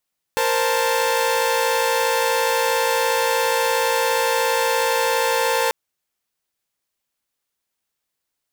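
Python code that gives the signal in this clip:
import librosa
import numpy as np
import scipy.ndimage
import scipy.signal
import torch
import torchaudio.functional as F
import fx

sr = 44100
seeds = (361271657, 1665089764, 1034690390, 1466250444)

y = fx.chord(sr, length_s=5.34, notes=(70, 72, 81), wave='saw', level_db=-19.5)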